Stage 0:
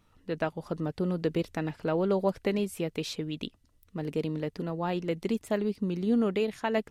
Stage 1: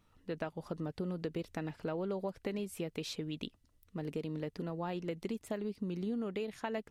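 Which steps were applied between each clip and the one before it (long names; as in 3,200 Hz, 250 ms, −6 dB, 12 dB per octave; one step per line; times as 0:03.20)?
downward compressor 5 to 1, threshold −30 dBFS, peak gain reduction 9 dB
level −4 dB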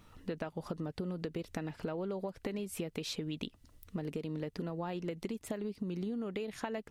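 downward compressor 6 to 1, threshold −46 dBFS, peak gain reduction 13 dB
level +10.5 dB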